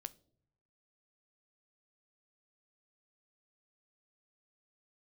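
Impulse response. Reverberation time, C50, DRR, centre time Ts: not exponential, 21.5 dB, 13.5 dB, 2 ms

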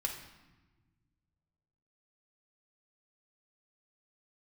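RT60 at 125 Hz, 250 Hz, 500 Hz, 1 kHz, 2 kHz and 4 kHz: 2.6, 2.1, 1.4, 1.1, 1.1, 0.90 s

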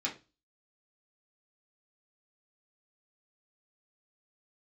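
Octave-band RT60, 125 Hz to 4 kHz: 0.40, 0.35, 0.30, 0.25, 0.25, 0.30 s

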